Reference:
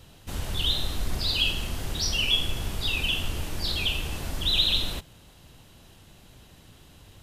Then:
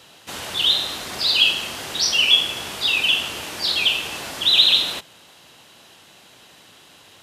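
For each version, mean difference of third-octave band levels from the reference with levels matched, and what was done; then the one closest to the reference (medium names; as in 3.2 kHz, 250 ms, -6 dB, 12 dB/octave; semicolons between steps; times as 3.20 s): 4.5 dB: frequency weighting A; trim +8 dB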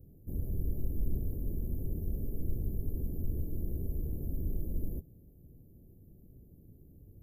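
16.0 dB: inverse Chebyshev band-stop 1.7–4.8 kHz, stop band 80 dB; trim -2.5 dB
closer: first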